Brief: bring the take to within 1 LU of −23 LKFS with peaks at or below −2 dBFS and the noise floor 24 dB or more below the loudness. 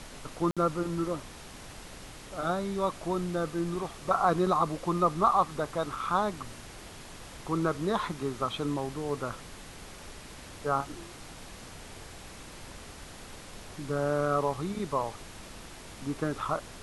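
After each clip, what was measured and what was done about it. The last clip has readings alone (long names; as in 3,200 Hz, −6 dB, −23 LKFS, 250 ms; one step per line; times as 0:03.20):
number of dropouts 1; longest dropout 56 ms; background noise floor −47 dBFS; target noise floor −55 dBFS; integrated loudness −30.5 LKFS; sample peak −12.0 dBFS; target loudness −23.0 LKFS
→ repair the gap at 0:00.51, 56 ms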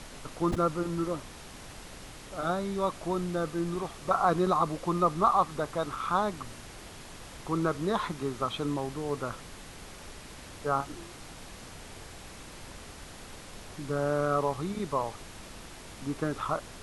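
number of dropouts 0; background noise floor −47 dBFS; target noise floor −55 dBFS
→ noise reduction from a noise print 8 dB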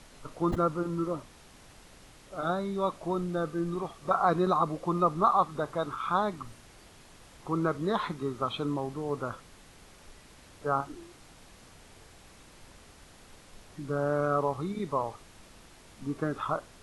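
background noise floor −55 dBFS; integrated loudness −30.5 LKFS; sample peak −12.5 dBFS; target loudness −23.0 LKFS
→ level +7.5 dB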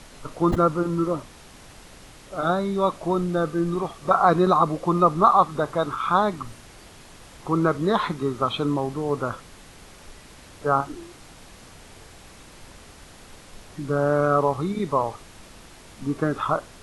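integrated loudness −23.0 LKFS; sample peak −5.0 dBFS; background noise floor −47 dBFS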